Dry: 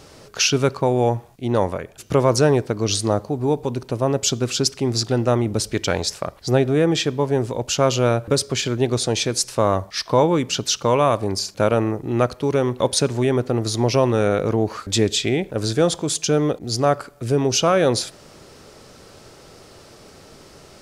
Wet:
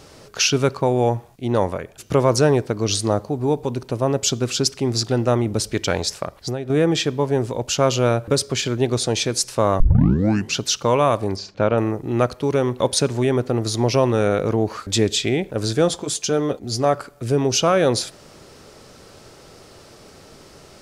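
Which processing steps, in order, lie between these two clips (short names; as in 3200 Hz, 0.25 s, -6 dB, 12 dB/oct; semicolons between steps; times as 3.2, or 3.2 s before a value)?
6.23–6.7 compressor 12:1, threshold -23 dBFS, peak gain reduction 12 dB; 9.8 tape start 0.77 s; 11.36–11.78 air absorption 180 m; 15.88–16.95 notch comb 160 Hz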